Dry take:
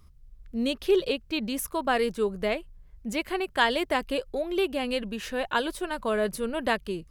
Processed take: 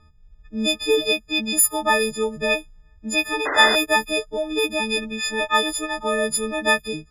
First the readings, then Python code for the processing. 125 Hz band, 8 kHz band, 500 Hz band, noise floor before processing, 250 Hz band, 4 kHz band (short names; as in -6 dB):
+2.5 dB, +17.5 dB, +3.5 dB, -54 dBFS, +2.5 dB, +11.0 dB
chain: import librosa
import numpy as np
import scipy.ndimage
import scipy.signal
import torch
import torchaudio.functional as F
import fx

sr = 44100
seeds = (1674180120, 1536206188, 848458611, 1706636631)

y = fx.freq_snap(x, sr, grid_st=6)
y = fx.env_lowpass(y, sr, base_hz=2700.0, full_db=-19.0)
y = fx.spec_paint(y, sr, seeds[0], shape='noise', start_s=3.45, length_s=0.31, low_hz=270.0, high_hz=2100.0, level_db=-27.0)
y = y * librosa.db_to_amplitude(3.0)